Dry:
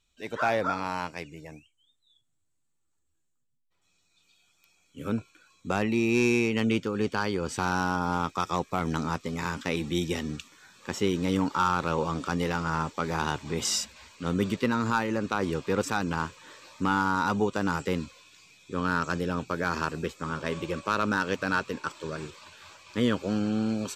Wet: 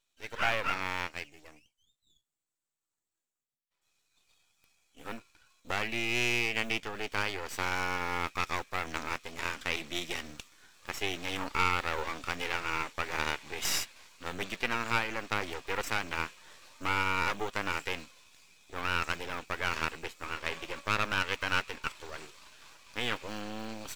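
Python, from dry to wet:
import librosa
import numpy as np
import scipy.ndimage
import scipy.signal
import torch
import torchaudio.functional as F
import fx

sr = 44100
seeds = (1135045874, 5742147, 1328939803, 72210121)

y = fx.block_float(x, sr, bits=7)
y = fx.highpass(y, sr, hz=660.0, slope=6)
y = np.maximum(y, 0.0)
y = fx.dynamic_eq(y, sr, hz=2300.0, q=1.1, threshold_db=-49.0, ratio=4.0, max_db=7)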